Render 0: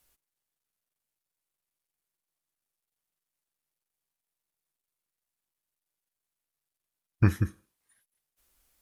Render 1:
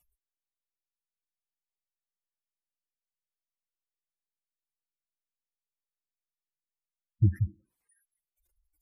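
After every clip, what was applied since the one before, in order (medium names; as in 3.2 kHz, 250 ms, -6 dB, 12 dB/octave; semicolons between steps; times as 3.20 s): spectral gate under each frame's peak -10 dB strong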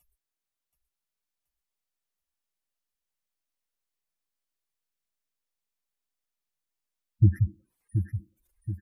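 feedback delay 727 ms, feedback 48%, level -8 dB; trim +4 dB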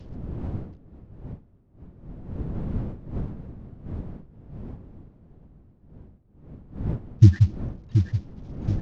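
CVSD coder 32 kbps; wind noise 160 Hz -42 dBFS; trim +7 dB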